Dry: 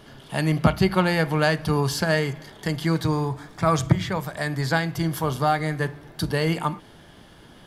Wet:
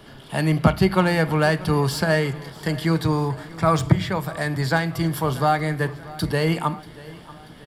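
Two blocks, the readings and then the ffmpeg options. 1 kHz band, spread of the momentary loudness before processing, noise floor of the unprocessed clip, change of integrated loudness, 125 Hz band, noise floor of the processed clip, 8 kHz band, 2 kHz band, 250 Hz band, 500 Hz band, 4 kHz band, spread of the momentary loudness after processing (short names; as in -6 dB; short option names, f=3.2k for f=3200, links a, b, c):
+2.0 dB, 9 LU, -49 dBFS, +2.0 dB, +2.0 dB, -44 dBFS, -0.5 dB, +1.0 dB, +2.0 dB, +2.0 dB, +0.5 dB, 10 LU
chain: -filter_complex "[0:a]bandreject=f=6.3k:w=7.2,acrossover=split=170|1600[a][b][c];[c]asoftclip=type=tanh:threshold=-24dB[d];[a][b][d]amix=inputs=3:normalize=0,aecho=1:1:636|1272|1908|2544:0.1|0.056|0.0314|0.0176,volume=2dB"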